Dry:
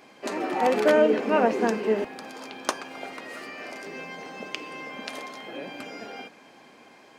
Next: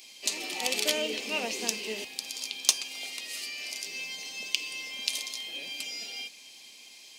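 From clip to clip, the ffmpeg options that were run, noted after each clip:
-af "aexciter=amount=11.3:drive=8.6:freq=2400,volume=0.188"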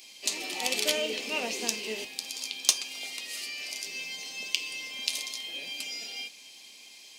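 -af "flanger=delay=10:depth=2.5:regen=-70:speed=0.29:shape=triangular,volume=1.68"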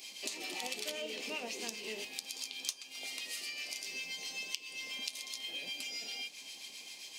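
-filter_complex "[0:a]acrossover=split=1000[s0][s1];[s0]aeval=exprs='val(0)*(1-0.5/2+0.5/2*cos(2*PI*7.6*n/s))':c=same[s2];[s1]aeval=exprs='val(0)*(1-0.5/2-0.5/2*cos(2*PI*7.6*n/s))':c=same[s3];[s2][s3]amix=inputs=2:normalize=0,acompressor=threshold=0.00708:ratio=4,volume=1.58"

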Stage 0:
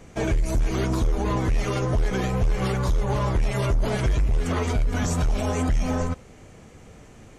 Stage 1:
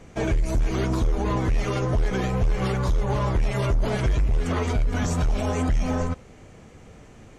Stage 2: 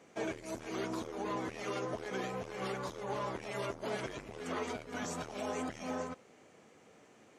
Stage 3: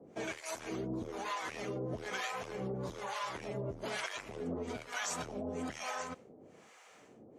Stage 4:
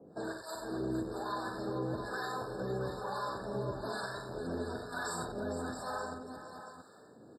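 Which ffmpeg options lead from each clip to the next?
-af "highshelf=f=8600:g=-7.5"
-af "highpass=280,volume=0.355"
-filter_complex "[0:a]acrossover=split=670[s0][s1];[s0]aeval=exprs='val(0)*(1-1/2+1/2*cos(2*PI*1.1*n/s))':c=same[s2];[s1]aeval=exprs='val(0)*(1-1/2-1/2*cos(2*PI*1.1*n/s))':c=same[s3];[s2][s3]amix=inputs=2:normalize=0,acrossover=split=170|1700[s4][s5][s6];[s5]alimiter=level_in=6.31:limit=0.0631:level=0:latency=1:release=190,volume=0.158[s7];[s4][s7][s6]amix=inputs=3:normalize=0,volume=2.37"
-af "aecho=1:1:49|93|459|675:0.531|0.447|0.316|0.355,afftfilt=real='re*eq(mod(floor(b*sr/1024/1800),2),0)':imag='im*eq(mod(floor(b*sr/1024/1800),2),0)':win_size=1024:overlap=0.75"

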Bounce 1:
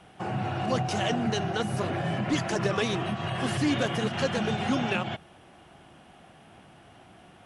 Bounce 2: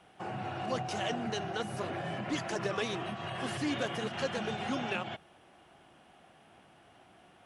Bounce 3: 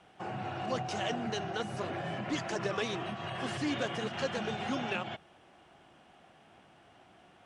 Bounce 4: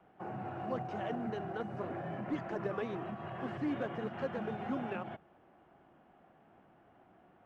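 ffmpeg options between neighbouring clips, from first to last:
-af "bass=f=250:g=-6,treble=f=4000:g=-1,volume=0.531"
-af "lowpass=f=8800:w=0.5412,lowpass=f=8800:w=1.3066"
-filter_complex "[0:a]acrossover=split=180 2100:gain=0.224 1 0.178[s0][s1][s2];[s0][s1][s2]amix=inputs=3:normalize=0,acrusher=bits=8:mode=log:mix=0:aa=0.000001,aemphasis=mode=reproduction:type=bsi,volume=0.631"

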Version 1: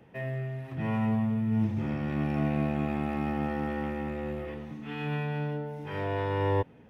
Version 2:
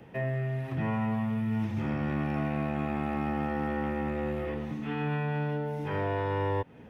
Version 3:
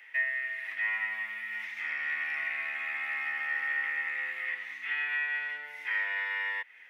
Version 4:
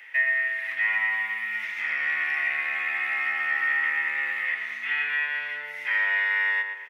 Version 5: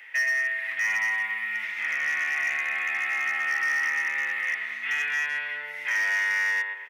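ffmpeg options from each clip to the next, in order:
-filter_complex "[0:a]acrossover=split=890|1800[s0][s1][s2];[s0]acompressor=threshold=0.02:ratio=4[s3];[s1]acompressor=threshold=0.00708:ratio=4[s4];[s2]acompressor=threshold=0.00158:ratio=4[s5];[s3][s4][s5]amix=inputs=3:normalize=0,volume=1.88"
-af "highpass=f=2000:t=q:w=7.8"
-filter_complex "[0:a]asplit=2[s0][s1];[s1]adelay=117,lowpass=f=2300:p=1,volume=0.562,asplit=2[s2][s3];[s3]adelay=117,lowpass=f=2300:p=1,volume=0.5,asplit=2[s4][s5];[s5]adelay=117,lowpass=f=2300:p=1,volume=0.5,asplit=2[s6][s7];[s7]adelay=117,lowpass=f=2300:p=1,volume=0.5,asplit=2[s8][s9];[s9]adelay=117,lowpass=f=2300:p=1,volume=0.5,asplit=2[s10][s11];[s11]adelay=117,lowpass=f=2300:p=1,volume=0.5[s12];[s0][s2][s4][s6][s8][s10][s12]amix=inputs=7:normalize=0,volume=2"
-af "asoftclip=type=hard:threshold=0.0841"

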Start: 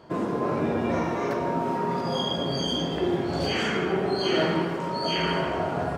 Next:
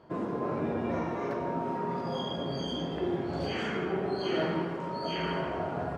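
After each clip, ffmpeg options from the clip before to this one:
-af "highshelf=f=3700:g=-10,volume=0.531"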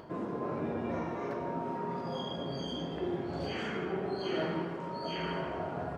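-af "acompressor=mode=upward:threshold=0.0126:ratio=2.5,volume=0.668"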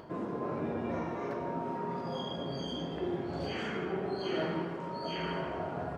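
-af anull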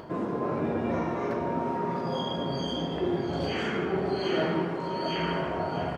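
-af "aecho=1:1:651:0.266,volume=2"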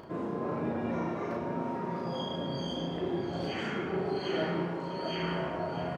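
-filter_complex "[0:a]asplit=2[s0][s1];[s1]adelay=35,volume=0.596[s2];[s0][s2]amix=inputs=2:normalize=0,volume=0.531"

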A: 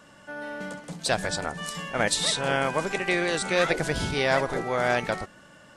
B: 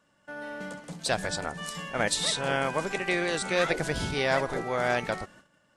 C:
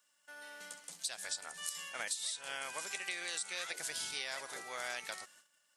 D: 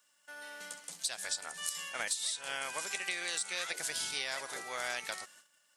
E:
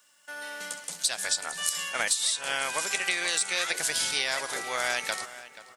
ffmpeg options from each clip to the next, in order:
-af "agate=range=0.224:threshold=0.00355:ratio=16:detection=peak,volume=0.75"
-af "aderivative,acompressor=threshold=0.0112:ratio=16,volume=1.58"
-af "aeval=exprs='0.119*(cos(1*acos(clip(val(0)/0.119,-1,1)))-cos(1*PI/2))+0.00266*(cos(4*acos(clip(val(0)/0.119,-1,1)))-cos(4*PI/2))':c=same,volume=1.5"
-filter_complex "[0:a]asplit=2[s0][s1];[s1]adelay=482,lowpass=f=3100:p=1,volume=0.178,asplit=2[s2][s3];[s3]adelay=482,lowpass=f=3100:p=1,volume=0.34,asplit=2[s4][s5];[s5]adelay=482,lowpass=f=3100:p=1,volume=0.34[s6];[s0][s2][s4][s6]amix=inputs=4:normalize=0,volume=2.66"

